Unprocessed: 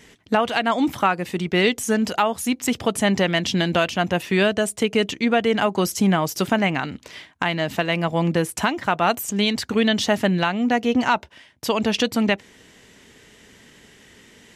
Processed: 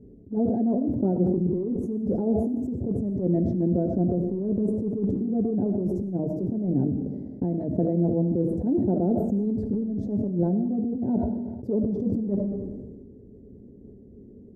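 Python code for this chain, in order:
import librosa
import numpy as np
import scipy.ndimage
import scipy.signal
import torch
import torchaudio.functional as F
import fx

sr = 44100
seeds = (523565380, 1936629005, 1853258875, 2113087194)

y = scipy.signal.sosfilt(scipy.signal.cheby2(4, 50, 1100.0, 'lowpass', fs=sr, output='sos'), x)
y = fx.notch_comb(y, sr, f0_hz=160.0)
y = fx.over_compress(y, sr, threshold_db=-28.0, ratio=-1.0)
y = fx.rev_freeverb(y, sr, rt60_s=0.89, hf_ratio=1.0, predelay_ms=40, drr_db=8.0)
y = fx.sustainer(y, sr, db_per_s=32.0)
y = y * 10.0 ** (2.5 / 20.0)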